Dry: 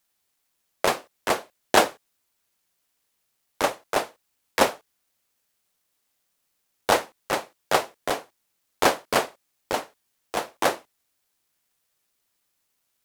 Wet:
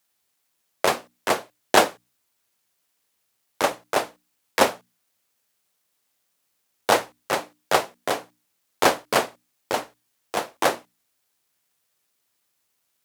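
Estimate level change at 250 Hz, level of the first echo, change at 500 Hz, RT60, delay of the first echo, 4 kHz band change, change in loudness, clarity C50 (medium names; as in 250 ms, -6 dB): +1.0 dB, no echo, +1.5 dB, no reverb, no echo, +1.5 dB, +1.5 dB, no reverb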